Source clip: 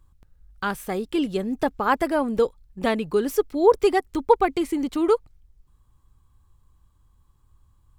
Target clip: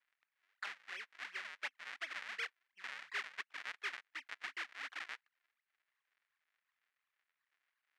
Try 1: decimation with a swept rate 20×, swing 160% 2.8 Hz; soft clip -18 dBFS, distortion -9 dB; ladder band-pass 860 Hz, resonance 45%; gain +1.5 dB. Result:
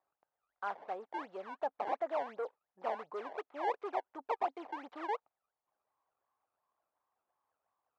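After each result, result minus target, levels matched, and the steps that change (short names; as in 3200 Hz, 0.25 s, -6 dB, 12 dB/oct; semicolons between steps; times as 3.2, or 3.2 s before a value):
2000 Hz band -12.0 dB; decimation with a swept rate: distortion -11 dB
change: ladder band-pass 2200 Hz, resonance 45%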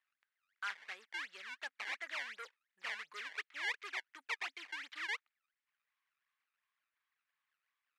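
decimation with a swept rate: distortion -11 dB
change: decimation with a swept rate 74×, swing 160% 2.8 Hz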